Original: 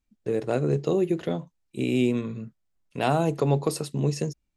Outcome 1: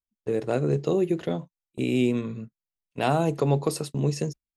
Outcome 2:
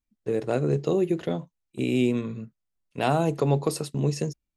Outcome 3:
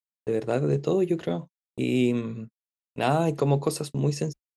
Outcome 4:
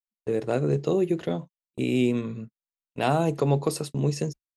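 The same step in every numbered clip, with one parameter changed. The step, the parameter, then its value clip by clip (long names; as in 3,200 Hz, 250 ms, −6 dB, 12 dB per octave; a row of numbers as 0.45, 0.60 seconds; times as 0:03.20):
noise gate, range: −20, −7, −57, −37 decibels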